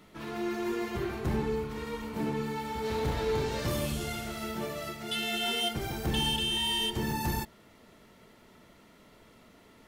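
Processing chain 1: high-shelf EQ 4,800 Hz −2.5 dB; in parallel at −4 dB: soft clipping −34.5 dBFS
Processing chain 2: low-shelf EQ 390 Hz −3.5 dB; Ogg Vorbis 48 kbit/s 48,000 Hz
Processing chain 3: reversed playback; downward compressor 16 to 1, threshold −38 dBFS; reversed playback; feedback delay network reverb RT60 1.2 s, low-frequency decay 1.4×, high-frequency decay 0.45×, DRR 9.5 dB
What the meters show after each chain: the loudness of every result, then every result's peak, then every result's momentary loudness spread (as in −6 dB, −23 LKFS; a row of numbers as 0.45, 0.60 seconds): −29.5, −33.0, −41.0 LKFS; −20.0, −20.5, −28.0 dBFS; 8, 10, 17 LU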